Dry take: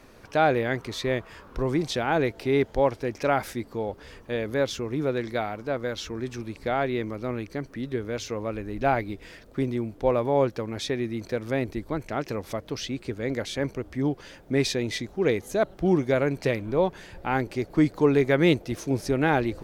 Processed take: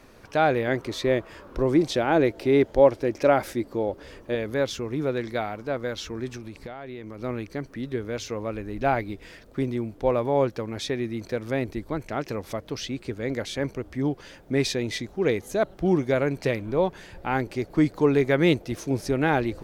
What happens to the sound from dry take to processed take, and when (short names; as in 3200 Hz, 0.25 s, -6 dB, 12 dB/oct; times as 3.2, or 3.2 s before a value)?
0.67–4.35 small resonant body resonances 330/560 Hz, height 7 dB, ringing for 25 ms
6.36–7.2 compressor 16:1, threshold -33 dBFS